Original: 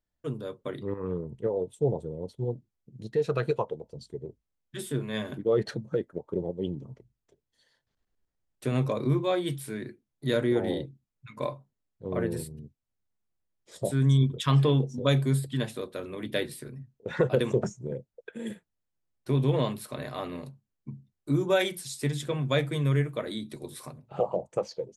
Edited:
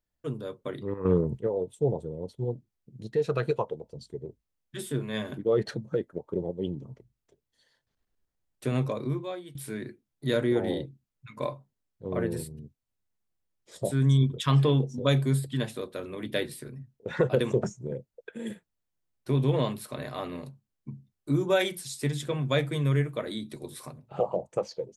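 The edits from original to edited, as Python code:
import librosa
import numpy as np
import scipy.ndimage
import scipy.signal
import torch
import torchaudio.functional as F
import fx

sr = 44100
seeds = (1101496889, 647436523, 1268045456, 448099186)

y = fx.edit(x, sr, fx.clip_gain(start_s=1.05, length_s=0.33, db=9.5),
    fx.fade_out_to(start_s=8.71, length_s=0.84, floor_db=-21.0), tone=tone)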